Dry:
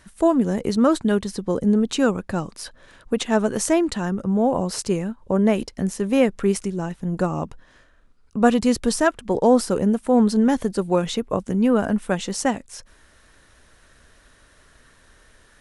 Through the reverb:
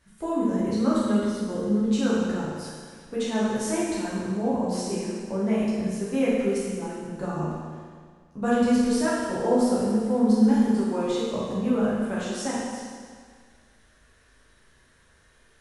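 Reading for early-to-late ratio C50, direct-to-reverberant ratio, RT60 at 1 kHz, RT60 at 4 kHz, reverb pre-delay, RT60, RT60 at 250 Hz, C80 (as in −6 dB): −2.0 dB, −9.0 dB, 1.8 s, 1.7 s, 8 ms, 1.8 s, 1.8 s, 0.0 dB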